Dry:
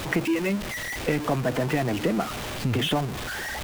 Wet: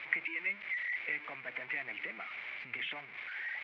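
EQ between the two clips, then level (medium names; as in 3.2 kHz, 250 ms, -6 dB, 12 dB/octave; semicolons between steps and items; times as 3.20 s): band-pass filter 2.2 kHz, Q 8.9; distance through air 280 m; +7.0 dB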